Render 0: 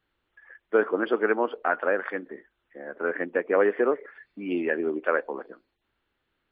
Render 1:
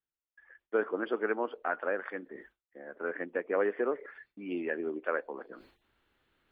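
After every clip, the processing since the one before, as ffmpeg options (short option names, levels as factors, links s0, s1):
-af "agate=range=0.0224:threshold=0.00251:ratio=3:detection=peak,areverse,acompressor=mode=upward:threshold=0.0224:ratio=2.5,areverse,volume=0.422"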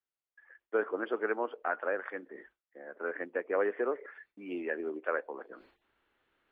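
-filter_complex "[0:a]bass=f=250:g=-9,treble=f=4000:g=-11,acrossover=split=120[s0][s1];[s0]acrusher=bits=2:mode=log:mix=0:aa=0.000001[s2];[s2][s1]amix=inputs=2:normalize=0"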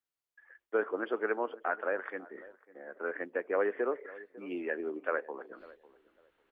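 -filter_complex "[0:a]asplit=2[s0][s1];[s1]adelay=549,lowpass=f=1000:p=1,volume=0.119,asplit=2[s2][s3];[s3]adelay=549,lowpass=f=1000:p=1,volume=0.24[s4];[s0][s2][s4]amix=inputs=3:normalize=0"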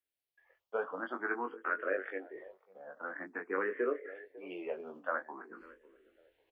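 -filter_complex "[0:a]asplit=2[s0][s1];[s1]adelay=21,volume=0.562[s2];[s0][s2]amix=inputs=2:normalize=0,asplit=2[s3][s4];[s4]afreqshift=0.49[s5];[s3][s5]amix=inputs=2:normalize=1"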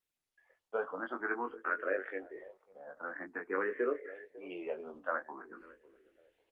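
-ar 48000 -c:a libopus -b:a 32k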